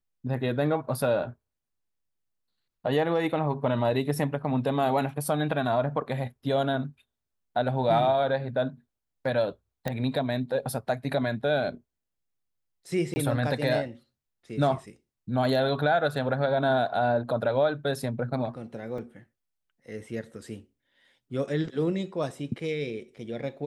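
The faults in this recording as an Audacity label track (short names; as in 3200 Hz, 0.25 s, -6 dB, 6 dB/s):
9.880000	9.880000	pop -16 dBFS
13.140000	13.160000	gap 20 ms
18.980000	18.980000	gap 3.3 ms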